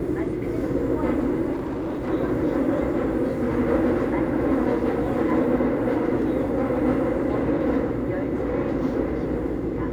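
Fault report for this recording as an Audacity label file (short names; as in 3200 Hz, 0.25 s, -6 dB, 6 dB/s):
1.520000	2.100000	clipped -24.5 dBFS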